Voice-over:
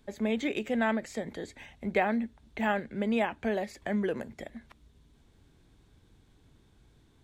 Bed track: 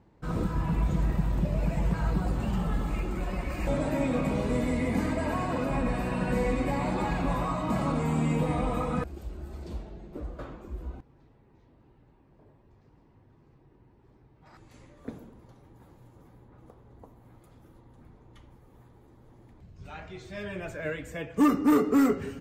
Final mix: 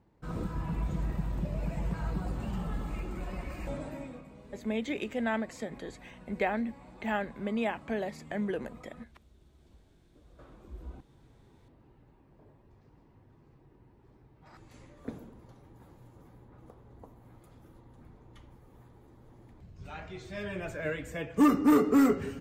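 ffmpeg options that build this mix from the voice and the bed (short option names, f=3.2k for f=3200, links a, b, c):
-filter_complex "[0:a]adelay=4450,volume=-3dB[a];[1:a]volume=17dB,afade=t=out:st=3.44:d=0.82:silence=0.133352,afade=t=in:st=10.23:d=1.26:silence=0.0707946[b];[a][b]amix=inputs=2:normalize=0"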